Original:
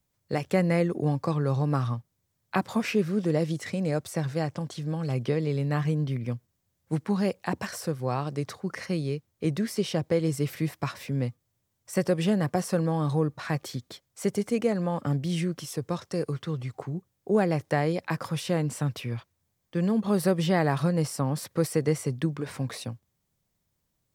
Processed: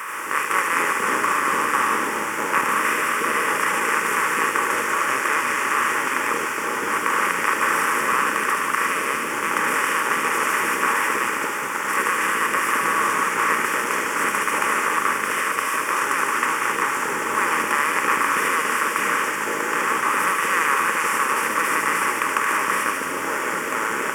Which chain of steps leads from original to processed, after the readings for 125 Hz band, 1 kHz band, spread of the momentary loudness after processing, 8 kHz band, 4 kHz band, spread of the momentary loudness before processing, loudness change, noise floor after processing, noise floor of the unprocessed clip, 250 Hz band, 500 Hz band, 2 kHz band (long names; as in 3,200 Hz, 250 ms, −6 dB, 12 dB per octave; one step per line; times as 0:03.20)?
−18.0 dB, +17.0 dB, 4 LU, +15.0 dB, +10.0 dB, 9 LU, +8.0 dB, −26 dBFS, −77 dBFS, −5.0 dB, 0.0 dB, +20.5 dB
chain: compressor on every frequency bin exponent 0.2
high-pass with resonance 1,100 Hz, resonance Q 4.2
delay with a high-pass on its return 75 ms, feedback 81%, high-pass 2,200 Hz, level −4 dB
delay with pitch and tempo change per echo 86 ms, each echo −5 semitones, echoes 3
phaser with its sweep stopped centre 1,700 Hz, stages 4